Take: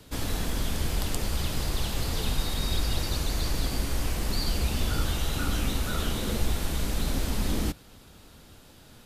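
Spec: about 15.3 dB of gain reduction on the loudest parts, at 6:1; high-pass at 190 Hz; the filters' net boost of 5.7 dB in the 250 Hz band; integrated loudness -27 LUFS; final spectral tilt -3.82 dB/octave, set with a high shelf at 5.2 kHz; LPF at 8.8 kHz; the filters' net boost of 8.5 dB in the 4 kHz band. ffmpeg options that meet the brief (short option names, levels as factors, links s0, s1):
-af "highpass=190,lowpass=8800,equalizer=f=250:t=o:g=9,equalizer=f=4000:t=o:g=8,highshelf=f=5200:g=5,acompressor=threshold=0.01:ratio=6,volume=4.73"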